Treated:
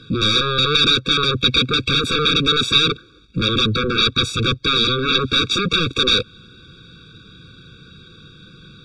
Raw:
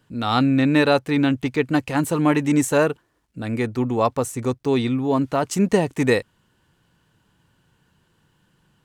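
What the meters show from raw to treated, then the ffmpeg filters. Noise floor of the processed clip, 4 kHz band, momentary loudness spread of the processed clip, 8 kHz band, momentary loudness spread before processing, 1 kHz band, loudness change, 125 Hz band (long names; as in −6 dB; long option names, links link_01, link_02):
−47 dBFS, +20.0 dB, 5 LU, +0.5 dB, 7 LU, +1.5 dB, +4.5 dB, +1.5 dB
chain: -af "acompressor=threshold=-22dB:ratio=4,aeval=exprs='0.211*sin(PI/2*7.08*val(0)/0.211)':channel_layout=same,lowpass=frequency=3900:width_type=q:width=9.5,afftfilt=real='re*eq(mod(floor(b*sr/1024/550),2),0)':imag='im*eq(mod(floor(b*sr/1024/550),2),0)':win_size=1024:overlap=0.75,volume=-2dB"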